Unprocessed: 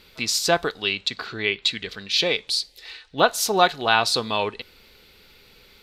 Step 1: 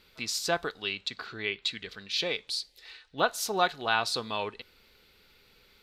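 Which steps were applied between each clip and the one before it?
peaking EQ 1.4 kHz +2.5 dB; trim -9 dB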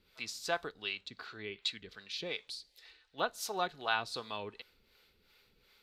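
harmonic tremolo 2.7 Hz, depth 70%, crossover 450 Hz; trim -4 dB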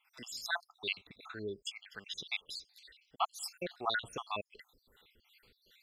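random holes in the spectrogram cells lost 69%; trim +5 dB

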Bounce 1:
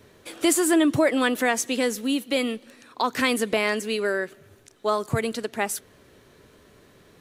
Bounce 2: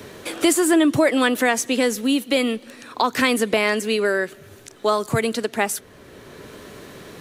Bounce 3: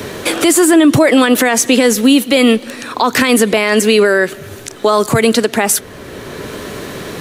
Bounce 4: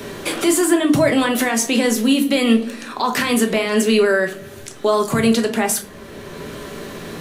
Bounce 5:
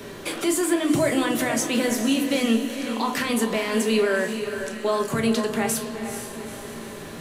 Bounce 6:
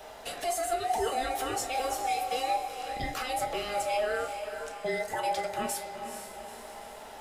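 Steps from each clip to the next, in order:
three bands compressed up and down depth 40%; trim +4 dB
loudness maximiser +15 dB; trim -1 dB
simulated room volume 240 m³, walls furnished, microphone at 1.2 m; trim -8 dB
echo that smears into a reverb 459 ms, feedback 50%, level -8 dB; trim -6.5 dB
every band turned upside down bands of 1 kHz; trim -8.5 dB

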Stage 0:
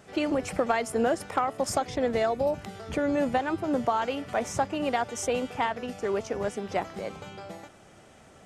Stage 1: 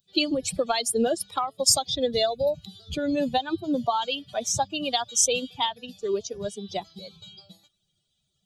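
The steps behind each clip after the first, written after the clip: expander on every frequency bin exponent 2; resonant high shelf 2.7 kHz +10.5 dB, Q 3; trim +5 dB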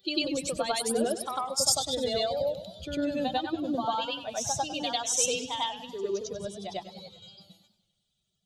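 reverse echo 98 ms -3.5 dB; modulated delay 98 ms, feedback 53%, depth 156 cents, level -13 dB; trim -5.5 dB

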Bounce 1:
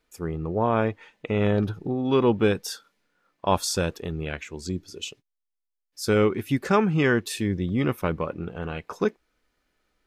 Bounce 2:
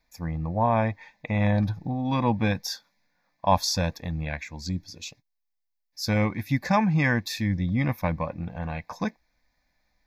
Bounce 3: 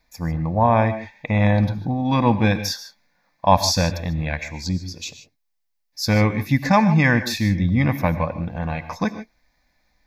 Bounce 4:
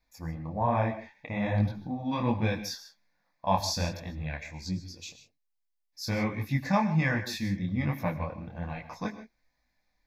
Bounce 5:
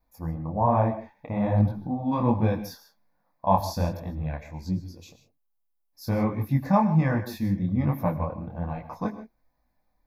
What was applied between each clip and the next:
static phaser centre 2 kHz, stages 8; trim +3.5 dB
gated-style reverb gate 170 ms rising, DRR 11.5 dB; trim +6 dB
detune thickener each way 43 cents; trim -7 dB
high-order bell 3.8 kHz -13 dB 2.7 oct; trim +5 dB

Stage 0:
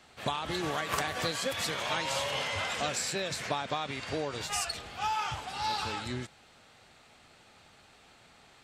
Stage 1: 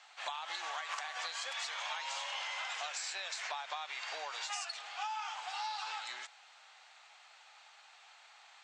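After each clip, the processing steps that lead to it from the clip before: Chebyshev band-pass 790–7100 Hz, order 3; compression, threshold -38 dBFS, peak gain reduction 10 dB; trim +1 dB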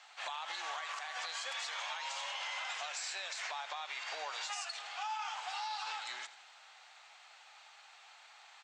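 peak limiter -32 dBFS, peak gain reduction 7.5 dB; feedback delay 81 ms, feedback 56%, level -16 dB; trim +1 dB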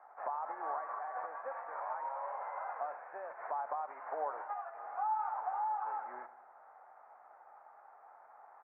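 Gaussian low-pass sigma 8.7 samples; trim +11 dB

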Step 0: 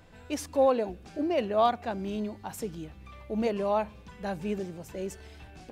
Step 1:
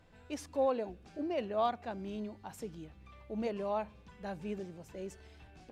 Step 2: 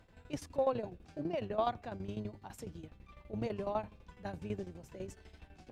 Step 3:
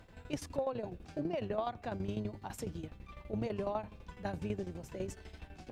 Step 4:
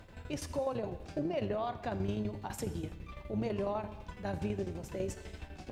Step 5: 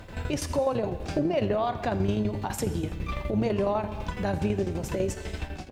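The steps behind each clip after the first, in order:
treble shelf 11 kHz -9.5 dB; trim -7.5 dB
octave divider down 1 oct, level -3 dB; tremolo saw down 12 Hz, depth 80%; trim +2 dB
compression 6:1, threshold -38 dBFS, peak gain reduction 11 dB; trim +5.5 dB
peak limiter -29 dBFS, peak gain reduction 7 dB; gated-style reverb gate 360 ms falling, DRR 10 dB; trim +3.5 dB
fade out at the end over 0.65 s; recorder AGC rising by 34 dB/s; trim +8.5 dB

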